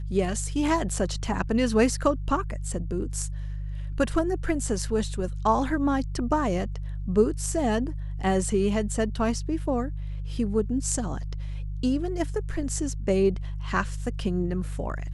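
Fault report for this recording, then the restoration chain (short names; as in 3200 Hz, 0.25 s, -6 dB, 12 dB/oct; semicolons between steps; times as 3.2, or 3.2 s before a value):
hum 50 Hz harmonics 3 -32 dBFS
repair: de-hum 50 Hz, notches 3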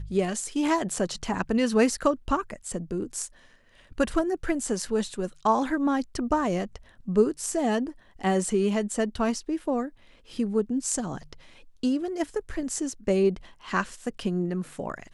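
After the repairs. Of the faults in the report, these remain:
none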